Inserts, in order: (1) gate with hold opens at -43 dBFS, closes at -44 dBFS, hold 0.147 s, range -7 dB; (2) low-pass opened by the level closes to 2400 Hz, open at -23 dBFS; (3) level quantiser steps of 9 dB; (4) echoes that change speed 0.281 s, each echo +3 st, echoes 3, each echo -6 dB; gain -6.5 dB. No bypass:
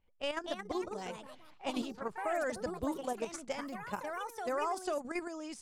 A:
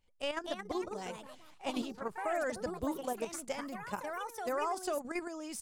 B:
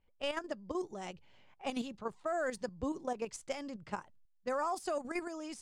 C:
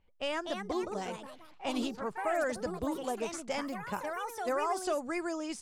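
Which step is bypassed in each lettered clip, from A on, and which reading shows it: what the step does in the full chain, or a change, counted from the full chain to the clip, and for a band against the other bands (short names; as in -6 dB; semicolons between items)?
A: 2, 8 kHz band +3.0 dB; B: 4, momentary loudness spread change +1 LU; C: 3, loudness change +3.0 LU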